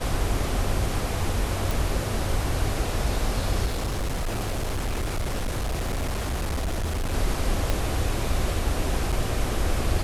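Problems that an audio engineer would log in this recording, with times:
1.71 s: pop
3.65–7.14 s: clipped -23.5 dBFS
7.70 s: pop -11 dBFS
9.12–9.13 s: dropout 6.4 ms

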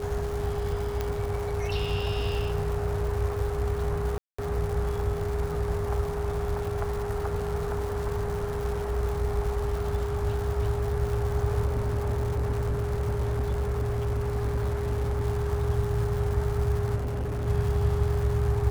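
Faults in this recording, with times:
crackle 320 per s -34 dBFS
whine 410 Hz -31 dBFS
1.01 s: pop -15 dBFS
4.18–4.38 s: dropout 205 ms
11.65–15.22 s: clipped -23 dBFS
16.95–17.48 s: clipped -27 dBFS

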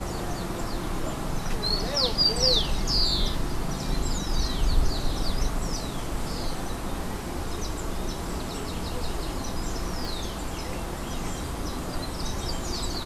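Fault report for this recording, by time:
10.05 s: pop

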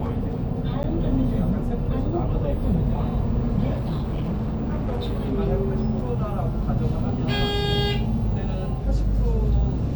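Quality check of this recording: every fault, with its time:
0.83–0.84 s: dropout 9.5 ms
3.73–5.32 s: clipped -22 dBFS

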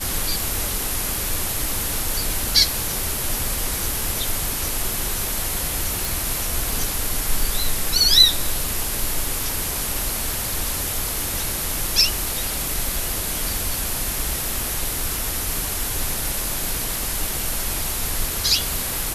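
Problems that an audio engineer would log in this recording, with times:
6.05 s: pop

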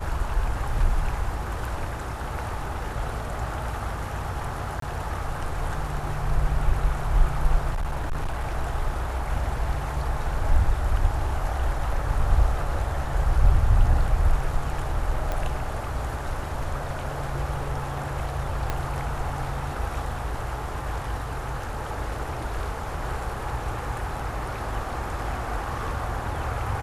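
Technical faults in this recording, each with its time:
4.80–4.82 s: dropout 23 ms
7.70–8.55 s: clipped -23 dBFS
15.32 s: pop -15 dBFS
18.70 s: pop -12 dBFS

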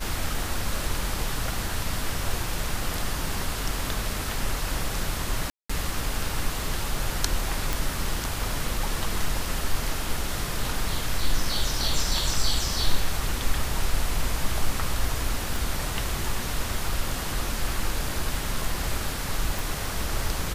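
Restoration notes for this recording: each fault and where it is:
5.50–5.70 s: dropout 195 ms
7.73 s: pop
15.56 s: pop
19.59 s: pop

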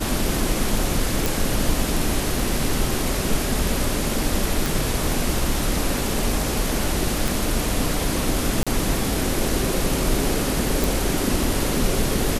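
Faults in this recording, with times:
1.26 s: pop
4.66 s: pop
7.28 s: pop
8.63–8.67 s: dropout 36 ms
10.84 s: pop

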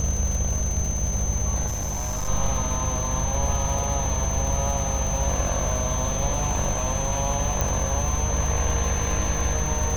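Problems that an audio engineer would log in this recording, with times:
crackle 380 per s -31 dBFS
hum 50 Hz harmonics 4 -29 dBFS
whine 6.2 kHz -29 dBFS
1.66–2.29 s: clipped -24 dBFS
7.61 s: pop -9 dBFS

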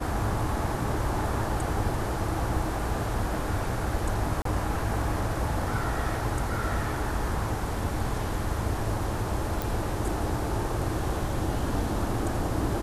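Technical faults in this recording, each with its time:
4.42–4.45 s: dropout 33 ms
9.62 s: pop

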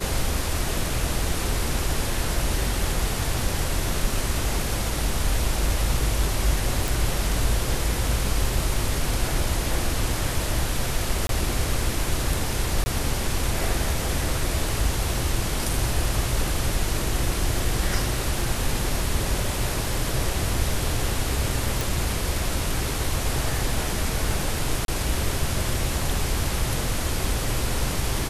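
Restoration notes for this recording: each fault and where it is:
6.88 s: pop
11.27–11.29 s: dropout 22 ms
12.84–12.86 s: dropout 20 ms
21.81 s: pop
24.85–24.88 s: dropout 32 ms

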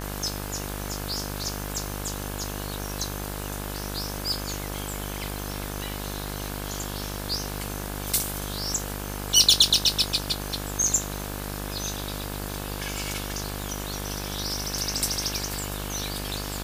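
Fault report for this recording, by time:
buzz 50 Hz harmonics 35 -34 dBFS
crackle 47 per s -35 dBFS

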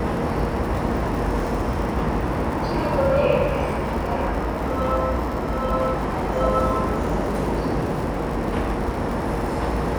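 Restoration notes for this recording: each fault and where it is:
crackle 110 per s -30 dBFS

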